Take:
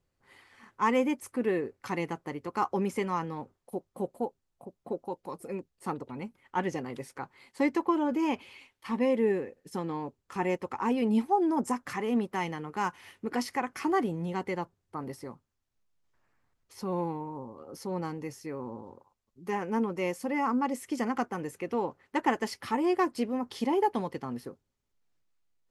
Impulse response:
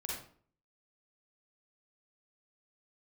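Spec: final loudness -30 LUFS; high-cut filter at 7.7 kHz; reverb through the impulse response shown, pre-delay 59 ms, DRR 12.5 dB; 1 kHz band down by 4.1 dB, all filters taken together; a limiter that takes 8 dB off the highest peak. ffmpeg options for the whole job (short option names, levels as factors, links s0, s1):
-filter_complex "[0:a]lowpass=7700,equalizer=f=1000:t=o:g=-5,alimiter=limit=0.0708:level=0:latency=1,asplit=2[s0][s1];[1:a]atrim=start_sample=2205,adelay=59[s2];[s1][s2]afir=irnorm=-1:irlink=0,volume=0.211[s3];[s0][s3]amix=inputs=2:normalize=0,volume=1.68"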